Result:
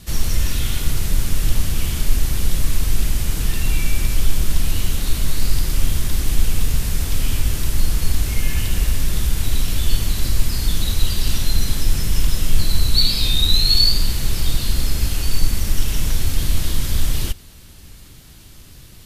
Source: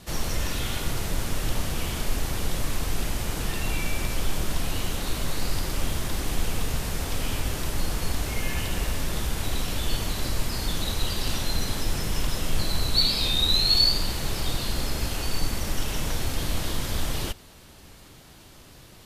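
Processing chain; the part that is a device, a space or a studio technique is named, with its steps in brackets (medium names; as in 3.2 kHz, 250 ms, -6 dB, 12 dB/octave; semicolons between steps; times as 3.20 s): smiley-face EQ (bass shelf 94 Hz +8 dB; peaking EQ 710 Hz -8 dB 2.1 oct; treble shelf 9.5 kHz +5.5 dB); trim +4 dB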